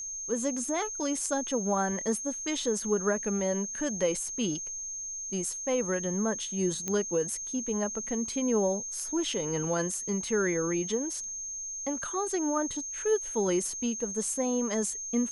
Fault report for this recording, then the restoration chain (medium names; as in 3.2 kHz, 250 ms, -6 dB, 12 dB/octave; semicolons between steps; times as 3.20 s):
whine 6.4 kHz -35 dBFS
6.88 s: pop -17 dBFS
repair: de-click; band-stop 6.4 kHz, Q 30